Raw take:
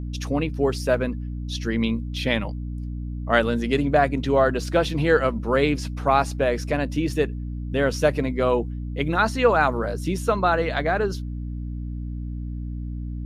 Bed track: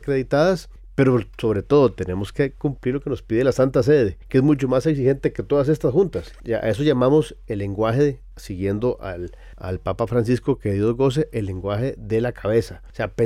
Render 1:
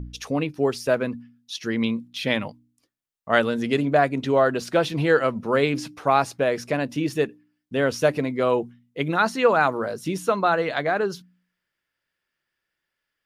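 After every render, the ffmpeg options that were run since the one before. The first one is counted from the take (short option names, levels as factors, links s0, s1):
-af "bandreject=f=60:t=h:w=4,bandreject=f=120:t=h:w=4,bandreject=f=180:t=h:w=4,bandreject=f=240:t=h:w=4,bandreject=f=300:t=h:w=4"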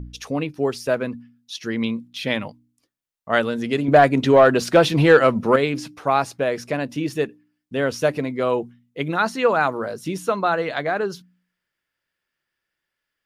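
-filter_complex "[0:a]asettb=1/sr,asplit=3[s0][s1][s2];[s0]atrim=end=3.884[s3];[s1]atrim=start=3.88:end=5.56,asetpts=PTS-STARTPTS,afade=t=in:d=0.004:c=qsin,afade=t=out:st=1.676:d=0.004:c=qsin,acontrast=88[s4];[s2]atrim=start=5.556[s5];[s3][s4]acrossfade=d=0.004:c1=hsin:c2=qsin[s6];[s6][s5]acrossfade=d=0.004:c1=qsin:c2=hsin"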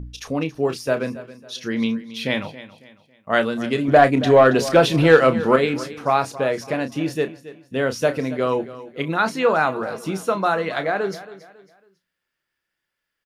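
-filter_complex "[0:a]asplit=2[s0][s1];[s1]adelay=31,volume=0.316[s2];[s0][s2]amix=inputs=2:normalize=0,aecho=1:1:275|550|825:0.158|0.0555|0.0194"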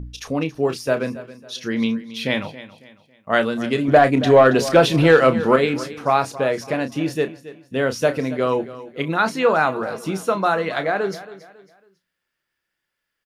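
-af "volume=1.12,alimiter=limit=0.708:level=0:latency=1"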